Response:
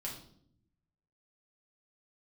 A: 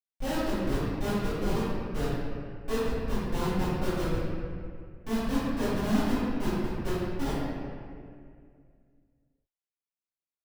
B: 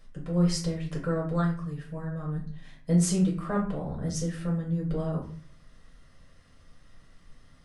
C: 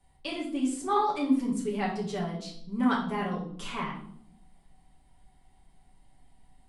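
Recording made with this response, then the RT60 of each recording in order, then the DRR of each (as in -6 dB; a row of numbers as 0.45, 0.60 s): C; 2.2, 0.45, 0.65 s; -17.0, -3.5, -4.0 dB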